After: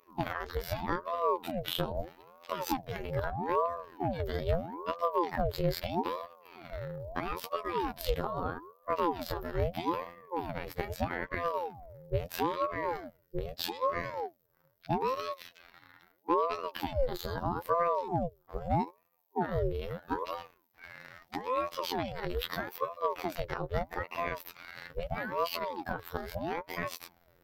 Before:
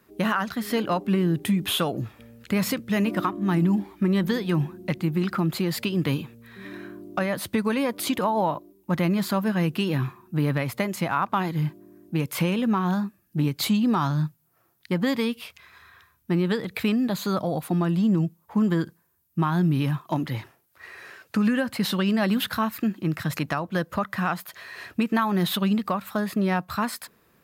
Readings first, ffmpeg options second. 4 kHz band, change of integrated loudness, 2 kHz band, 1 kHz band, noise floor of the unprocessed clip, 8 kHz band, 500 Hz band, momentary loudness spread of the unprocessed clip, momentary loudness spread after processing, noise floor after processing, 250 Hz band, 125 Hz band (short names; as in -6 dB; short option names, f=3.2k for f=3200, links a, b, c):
-9.5 dB, -9.0 dB, -9.0 dB, -3.0 dB, -66 dBFS, -13.5 dB, -4.0 dB, 9 LU, 11 LU, -70 dBFS, -17.0 dB, -13.0 dB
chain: -af "acompressor=threshold=-25dB:ratio=6,afftfilt=real='hypot(re,im)*cos(PI*b)':imag='0':win_size=2048:overlap=0.75,superequalizer=6b=2.82:12b=0.708:15b=0.501:16b=0.355,aeval=exprs='val(0)*sin(2*PI*520*n/s+520*0.65/0.78*sin(2*PI*0.78*n/s))':c=same"